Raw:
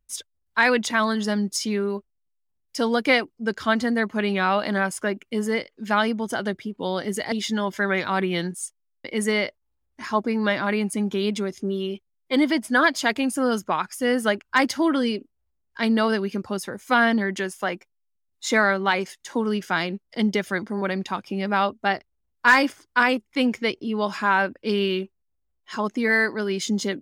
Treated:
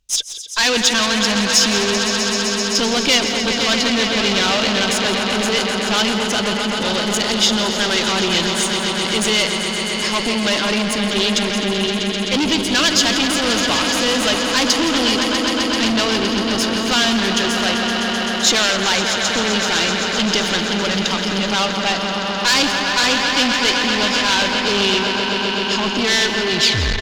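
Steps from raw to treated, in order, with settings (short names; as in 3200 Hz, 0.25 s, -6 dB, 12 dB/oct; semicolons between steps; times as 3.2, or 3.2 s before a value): tape stop at the end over 0.49 s; on a send: swelling echo 0.129 s, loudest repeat 5, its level -12 dB; on the sum: tube stage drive 25 dB, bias 0.5; band shelf 4400 Hz +11.5 dB; outdoor echo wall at 29 m, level -10 dB; gain +8.5 dB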